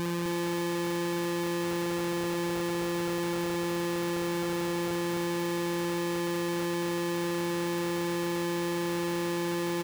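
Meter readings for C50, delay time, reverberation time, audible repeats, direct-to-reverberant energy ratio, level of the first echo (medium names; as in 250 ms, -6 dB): no reverb, 259 ms, no reverb, 1, no reverb, -3.5 dB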